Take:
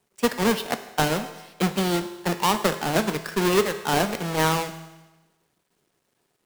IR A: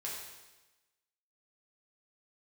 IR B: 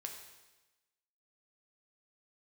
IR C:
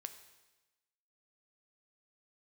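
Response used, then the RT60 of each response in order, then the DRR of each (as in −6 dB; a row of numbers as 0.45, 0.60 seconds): C; 1.1, 1.1, 1.1 seconds; −5.5, 2.0, 8.0 decibels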